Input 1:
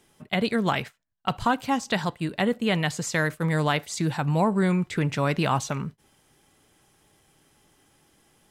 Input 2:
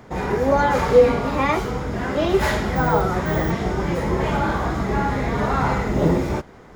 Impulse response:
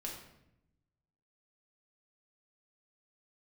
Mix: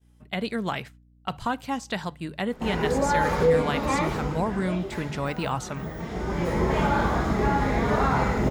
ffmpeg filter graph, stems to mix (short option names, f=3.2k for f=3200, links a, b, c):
-filter_complex "[0:a]bandreject=f=50:t=h:w=6,bandreject=f=100:t=h:w=6,bandreject=f=150:t=h:w=6,aeval=exprs='val(0)+0.00501*(sin(2*PI*60*n/s)+sin(2*PI*2*60*n/s)/2+sin(2*PI*3*60*n/s)/3+sin(2*PI*4*60*n/s)/4+sin(2*PI*5*60*n/s)/5)':c=same,volume=-4.5dB,asplit=2[a][b];[1:a]alimiter=limit=-11dB:level=0:latency=1:release=237,adelay=2500,volume=8dB,afade=t=out:st=4.1:d=0.7:silence=0.251189,afade=t=in:st=5.94:d=0.76:silence=0.298538,asplit=2[c][d];[d]volume=-4.5dB[e];[b]apad=whole_len=408143[f];[c][f]sidechaincompress=threshold=-31dB:ratio=8:attack=16:release=843[g];[2:a]atrim=start_sample=2205[h];[e][h]afir=irnorm=-1:irlink=0[i];[a][g][i]amix=inputs=3:normalize=0,agate=range=-33dB:threshold=-46dB:ratio=3:detection=peak"